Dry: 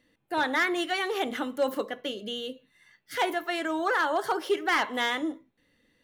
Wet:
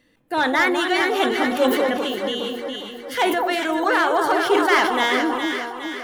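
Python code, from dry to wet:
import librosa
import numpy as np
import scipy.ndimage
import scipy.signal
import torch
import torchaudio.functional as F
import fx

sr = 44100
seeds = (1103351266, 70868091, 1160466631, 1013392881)

y = fx.echo_alternate(x, sr, ms=206, hz=1200.0, feedback_pct=73, wet_db=-3.0)
y = fx.sustainer(y, sr, db_per_s=43.0)
y = y * 10.0 ** (6.0 / 20.0)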